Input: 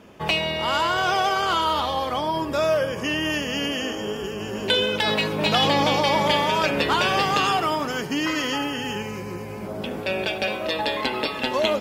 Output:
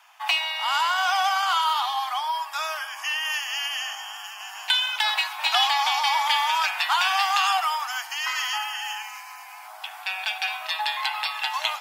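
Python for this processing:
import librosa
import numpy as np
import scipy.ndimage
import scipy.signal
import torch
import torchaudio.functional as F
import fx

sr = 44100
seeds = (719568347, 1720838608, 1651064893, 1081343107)

y = scipy.signal.sosfilt(scipy.signal.butter(16, 720.0, 'highpass', fs=sr, output='sos'), x)
y = fx.high_shelf(y, sr, hz=9500.0, db=6.0)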